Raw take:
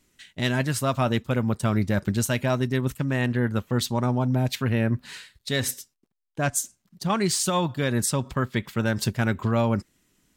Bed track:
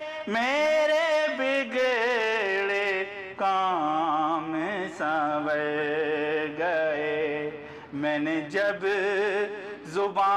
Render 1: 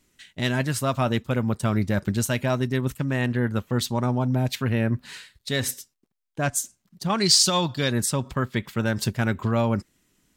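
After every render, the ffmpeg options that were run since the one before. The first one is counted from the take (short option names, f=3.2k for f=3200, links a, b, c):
-filter_complex "[0:a]asettb=1/sr,asplit=3[a][b][c];[a]atrim=end=7.184[d];[b]atrim=start=7.18:end=7.91,asetpts=PTS-STARTPTS,afade=t=in:d=0.004:c=qsin,afade=t=out:st=0.726:d=0.004:c=qsin,equalizer=f=4.8k:t=o:w=0.93:g=13.5[e];[c]atrim=start=7.906[f];[d][e]acrossfade=d=0.004:c1=hsin:c2=qsin[g];[g][f]acrossfade=d=0.004:c1=qsin:c2=hsin"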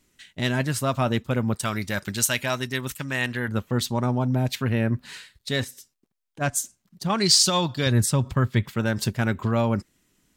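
-filter_complex "[0:a]asettb=1/sr,asplit=3[a][b][c];[a]atrim=end=1.554[d];[b]atrim=start=1.55:end=3.48,asetpts=PTS-STARTPTS,afade=t=in:d=0.004:c=qsin,afade=t=out:st=1.926:d=0.004:c=qsin,tiltshelf=f=970:g=-7.5[e];[c]atrim=start=3.476[f];[d][e]acrossfade=d=0.004:c1=hsin:c2=qsin[g];[g][f]acrossfade=d=0.004:c1=qsin:c2=hsin,asplit=3[h][i][j];[h]afade=t=out:st=5.63:d=0.02[k];[i]acompressor=threshold=-41dB:ratio=3:attack=3.2:release=140:knee=1:detection=peak,afade=t=in:st=5.63:d=0.02,afade=t=out:st=6.4:d=0.02[l];[j]afade=t=in:st=6.4:d=0.02[m];[k][l][m]amix=inputs=3:normalize=0,asettb=1/sr,asplit=3[n][o][p];[n]atrim=end=7.864[q];[o]atrim=start=7.86:end=8.71,asetpts=PTS-STARTPTS,afade=t=in:d=0.004:c=qsin,afade=t=out:st=0.846:d=0.004:c=qsin,equalizer=f=100:t=o:w=1.1:g=9.5[r];[p]atrim=start=8.706[s];[q][r]acrossfade=d=0.004:c1=hsin:c2=qsin[t];[t][s]acrossfade=d=0.004:c1=qsin:c2=hsin"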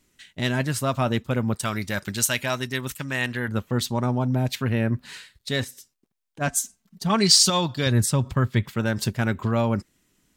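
-filter_complex "[0:a]asettb=1/sr,asplit=3[a][b][c];[a]atrim=end=6.474[d];[b]atrim=start=6.47:end=7.5,asetpts=PTS-STARTPTS,afade=t=in:d=0.004:c=qsin,afade=t=out:st=1.026:d=0.004:c=qsin,aecho=1:1:4.5:0.65,atrim=end_sample=45423[e];[c]atrim=start=7.496[f];[d][e]acrossfade=d=0.004:c1=hsin:c2=qsin[g];[g][f]acrossfade=d=0.004:c1=qsin:c2=hsin"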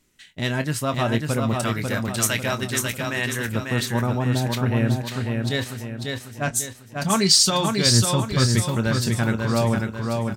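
-filter_complex "[0:a]asplit=2[a][b];[b]adelay=26,volume=-12dB[c];[a][c]amix=inputs=2:normalize=0,aecho=1:1:545|1090|1635|2180|2725|3270:0.631|0.278|0.122|0.0537|0.0236|0.0104"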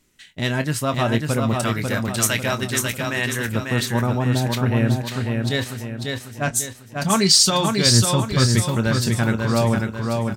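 -af "volume=2dB,alimiter=limit=-2dB:level=0:latency=1"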